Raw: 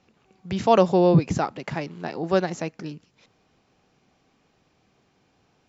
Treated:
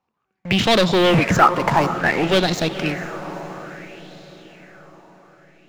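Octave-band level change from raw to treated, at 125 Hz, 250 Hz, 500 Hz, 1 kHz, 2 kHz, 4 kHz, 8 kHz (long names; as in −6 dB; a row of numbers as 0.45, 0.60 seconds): +3.0 dB, +4.0 dB, +2.5 dB, +7.5 dB, +15.0 dB, +17.0 dB, can't be measured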